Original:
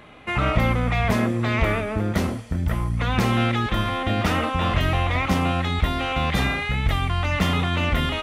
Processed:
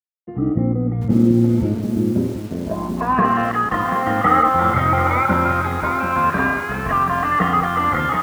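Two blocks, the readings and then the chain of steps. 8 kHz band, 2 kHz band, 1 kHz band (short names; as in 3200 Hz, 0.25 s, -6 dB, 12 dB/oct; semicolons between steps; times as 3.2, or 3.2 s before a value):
n/a, +2.5 dB, +9.0 dB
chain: moving spectral ripple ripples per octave 1.5, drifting +0.28 Hz, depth 18 dB; resonant high shelf 4100 Hz -13 dB, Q 1.5; crossover distortion -30.5 dBFS; low-pass sweep 300 Hz -> 1300 Hz, 2.22–3.26; HPF 130 Hz 12 dB/oct; bell 2700 Hz -5 dB 0.27 oct; lo-fi delay 0.734 s, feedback 35%, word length 6-bit, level -8 dB; gain +1.5 dB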